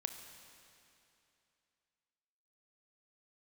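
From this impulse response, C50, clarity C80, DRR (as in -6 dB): 7.0 dB, 8.0 dB, 6.0 dB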